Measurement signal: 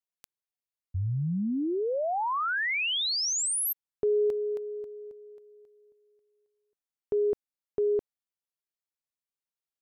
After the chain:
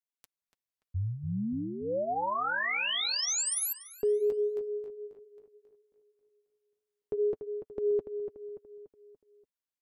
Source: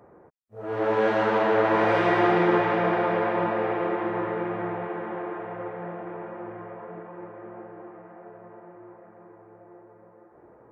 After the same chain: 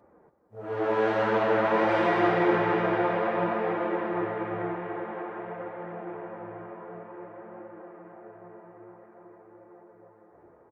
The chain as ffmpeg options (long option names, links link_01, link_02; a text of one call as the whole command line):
ffmpeg -i in.wav -filter_complex "[0:a]dynaudnorm=framelen=120:gausssize=5:maxgain=3.5dB,flanger=delay=3.4:depth=8.8:regen=-33:speed=0.52:shape=sinusoidal,asplit=2[link_01][link_02];[link_02]adelay=289,lowpass=frequency=3000:poles=1,volume=-8.5dB,asplit=2[link_03][link_04];[link_04]adelay=289,lowpass=frequency=3000:poles=1,volume=0.48,asplit=2[link_05][link_06];[link_06]adelay=289,lowpass=frequency=3000:poles=1,volume=0.48,asplit=2[link_07][link_08];[link_08]adelay=289,lowpass=frequency=3000:poles=1,volume=0.48,asplit=2[link_09][link_10];[link_10]adelay=289,lowpass=frequency=3000:poles=1,volume=0.48[link_11];[link_01][link_03][link_05][link_07][link_09][link_11]amix=inputs=6:normalize=0,volume=-2.5dB" out.wav